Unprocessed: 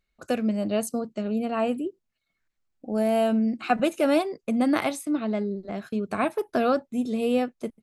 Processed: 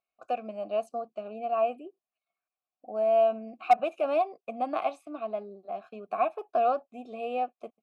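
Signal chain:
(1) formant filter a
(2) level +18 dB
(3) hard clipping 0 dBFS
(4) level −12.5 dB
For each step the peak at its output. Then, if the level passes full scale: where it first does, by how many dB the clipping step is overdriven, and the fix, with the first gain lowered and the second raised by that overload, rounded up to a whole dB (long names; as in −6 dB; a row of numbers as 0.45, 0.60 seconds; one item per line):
−13.5, +4.5, 0.0, −12.5 dBFS
step 2, 4.5 dB
step 2 +13 dB, step 4 −7.5 dB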